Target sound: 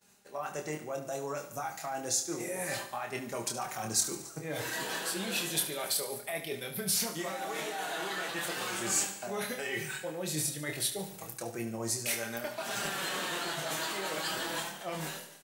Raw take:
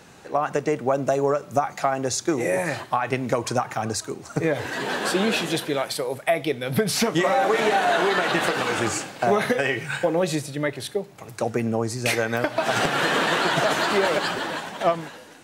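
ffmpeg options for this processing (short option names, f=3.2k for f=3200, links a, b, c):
-filter_complex "[0:a]agate=range=-33dB:threshold=-38dB:ratio=3:detection=peak,flanger=delay=4.9:depth=1.4:regen=35:speed=0.32:shape=sinusoidal,areverse,acompressor=threshold=-35dB:ratio=10,areverse,aemphasis=mode=production:type=75fm,asplit=2[a][b];[b]adelay=26,volume=-5dB[c];[a][c]amix=inputs=2:normalize=0,asplit=2[d][e];[e]aecho=0:1:72|144|216|288|360|432:0.251|0.133|0.0706|0.0374|0.0198|0.0105[f];[d][f]amix=inputs=2:normalize=0"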